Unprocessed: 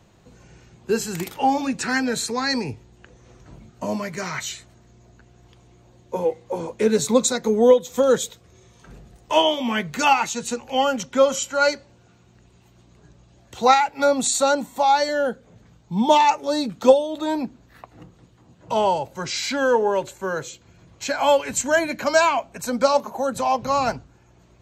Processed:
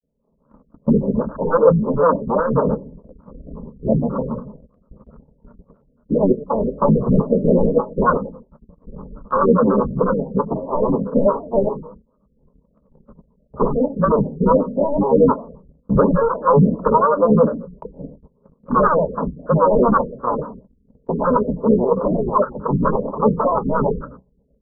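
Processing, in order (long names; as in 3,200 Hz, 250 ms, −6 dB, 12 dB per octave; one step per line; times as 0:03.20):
sub-harmonics by changed cycles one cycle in 3, muted
wave folding −17.5 dBFS
Butterworth low-pass 730 Hz 72 dB per octave
repeating echo 131 ms, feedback 18%, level −20 dB
feedback delay network reverb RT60 0.44 s, low-frequency decay 1.55×, high-frequency decay 0.25×, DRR 12 dB
automatic gain control gain up to 13.5 dB
granular cloud 100 ms, grains 22 per second, spray 24 ms, pitch spread up and down by 12 semitones
phaser with its sweep stopped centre 500 Hz, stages 8
noise gate −43 dBFS, range −16 dB
wow of a warped record 45 rpm, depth 100 cents
level +4 dB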